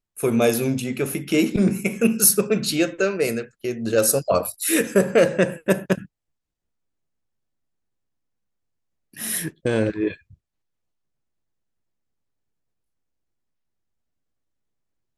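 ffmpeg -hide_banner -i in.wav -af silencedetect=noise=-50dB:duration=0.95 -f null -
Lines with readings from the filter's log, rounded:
silence_start: 6.06
silence_end: 9.14 | silence_duration: 3.07
silence_start: 10.34
silence_end: 15.18 | silence_duration: 4.83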